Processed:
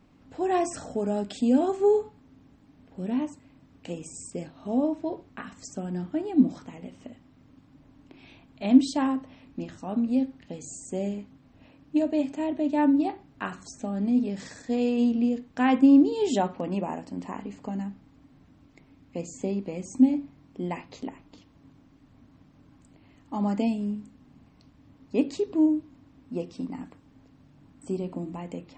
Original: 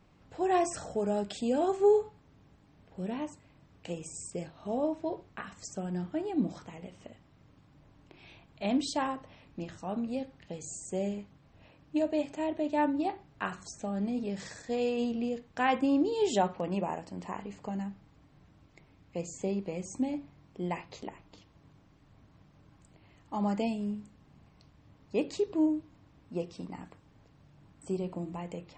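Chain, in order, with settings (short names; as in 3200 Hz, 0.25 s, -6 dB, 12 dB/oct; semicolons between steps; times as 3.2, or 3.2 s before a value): bell 260 Hz +13 dB 0.36 oct; gain +1 dB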